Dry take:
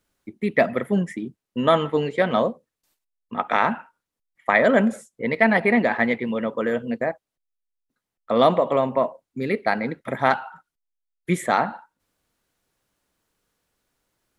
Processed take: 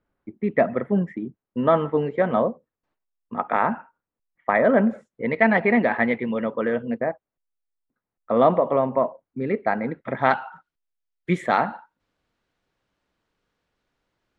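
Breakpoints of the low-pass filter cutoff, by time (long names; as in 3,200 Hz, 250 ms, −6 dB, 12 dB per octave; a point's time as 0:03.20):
0:04.79 1,500 Hz
0:05.46 2,700 Hz
0:06.70 2,700 Hz
0:07.10 1,600 Hz
0:09.81 1,600 Hz
0:10.39 3,900 Hz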